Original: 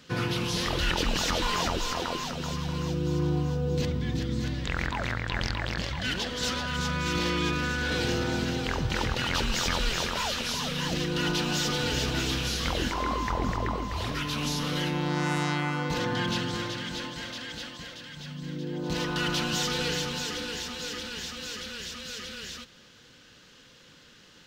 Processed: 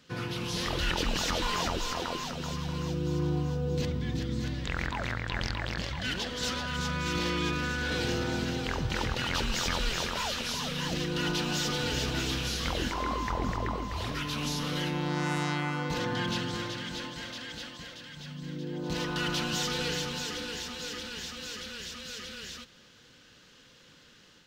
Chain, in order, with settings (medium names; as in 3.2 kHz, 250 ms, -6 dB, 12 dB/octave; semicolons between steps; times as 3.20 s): level rider gain up to 4 dB; trim -6.5 dB